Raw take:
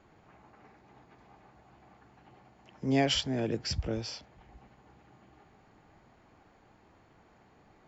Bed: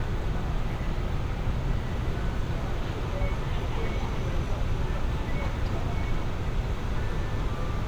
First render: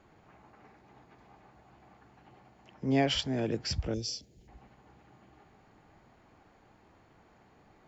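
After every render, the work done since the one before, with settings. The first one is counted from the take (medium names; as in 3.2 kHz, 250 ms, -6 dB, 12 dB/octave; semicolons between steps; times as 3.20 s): 2.74–3.19 s: treble shelf 6.7 kHz -11.5 dB; 3.94–4.48 s: FFT filter 430 Hz 0 dB, 1.1 kHz -26 dB, 5.7 kHz +7 dB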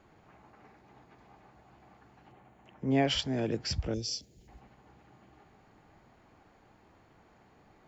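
2.32–3.05 s: peaking EQ 5 kHz -12.5 dB 0.59 oct; 4.11–4.60 s: treble shelf 4.5 kHz +5.5 dB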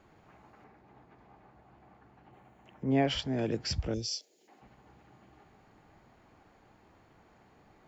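0.64–2.33 s: treble shelf 3.6 kHz -11.5 dB; 2.83–3.39 s: treble shelf 3.5 kHz -7.5 dB; 4.06–4.61 s: high-pass 620 Hz -> 220 Hz 24 dB/octave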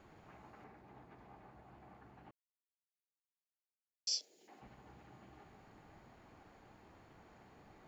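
2.31–4.07 s: mute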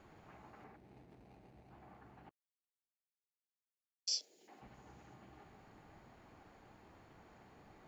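0.76–1.71 s: median filter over 41 samples; 2.29–4.09 s: gate -44 dBFS, range -22 dB; 4.74–5.14 s: peaking EQ 6.3 kHz +7 dB 0.55 oct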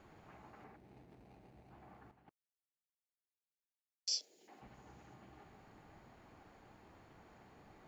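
2.11–4.12 s: gate -57 dBFS, range -10 dB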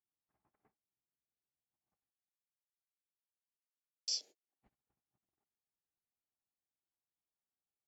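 gate -53 dBFS, range -46 dB; level-controlled noise filter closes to 2.3 kHz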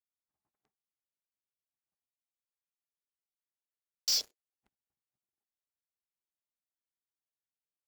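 waveshaping leveller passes 5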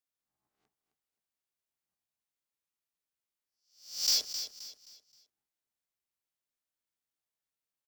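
reverse spectral sustain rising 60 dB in 0.49 s; on a send: feedback delay 263 ms, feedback 34%, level -10 dB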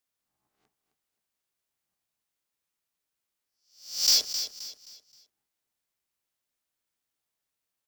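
trim +6 dB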